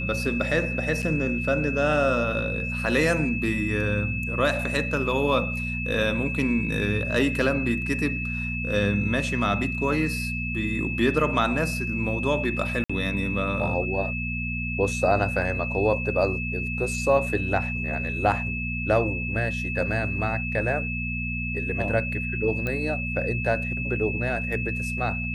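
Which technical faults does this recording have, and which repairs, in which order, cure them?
hum 60 Hz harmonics 4 -31 dBFS
whine 2.6 kHz -30 dBFS
1.02–1.03 s: dropout 7 ms
12.84–12.89 s: dropout 55 ms
22.67 s: pop -16 dBFS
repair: de-click; de-hum 60 Hz, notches 4; band-stop 2.6 kHz, Q 30; interpolate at 1.02 s, 7 ms; interpolate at 12.84 s, 55 ms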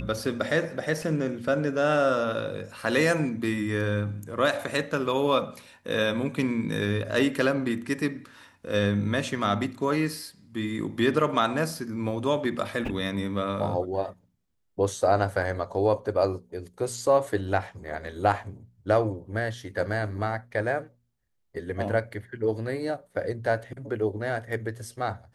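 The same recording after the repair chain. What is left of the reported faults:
nothing left

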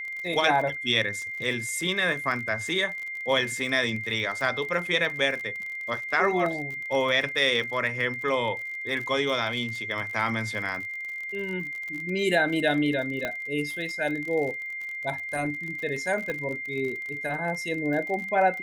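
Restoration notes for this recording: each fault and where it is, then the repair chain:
crackle 48 per s -33 dBFS
whine 2.1 kHz -32 dBFS
6.46 s: dropout 2 ms
13.25 s: pop -15 dBFS
16.30 s: pop -19 dBFS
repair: de-click; band-stop 2.1 kHz, Q 30; interpolate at 6.46 s, 2 ms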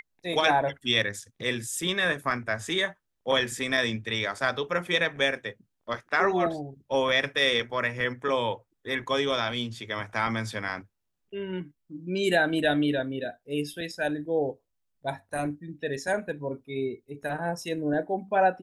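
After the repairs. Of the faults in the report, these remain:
16.30 s: pop

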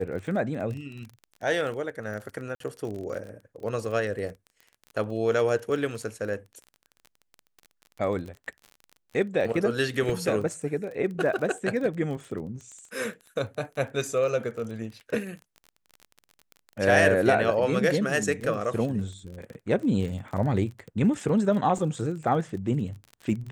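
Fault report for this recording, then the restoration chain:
crackle 29 per s -35 dBFS
2.55–2.60 s: dropout 53 ms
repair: de-click; interpolate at 2.55 s, 53 ms

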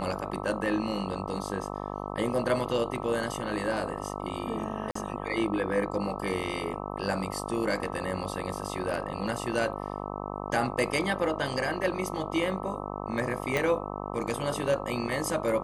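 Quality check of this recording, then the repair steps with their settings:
buzz 50 Hz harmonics 26 -36 dBFS
4.91–4.95 s: dropout 44 ms
13.57 s: pop -13 dBFS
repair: de-click; de-hum 50 Hz, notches 26; interpolate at 4.91 s, 44 ms

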